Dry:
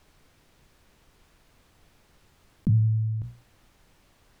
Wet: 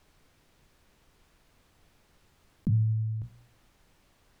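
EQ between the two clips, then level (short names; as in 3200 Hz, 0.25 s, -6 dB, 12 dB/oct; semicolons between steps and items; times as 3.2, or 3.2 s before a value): notches 60/120 Hz; -3.5 dB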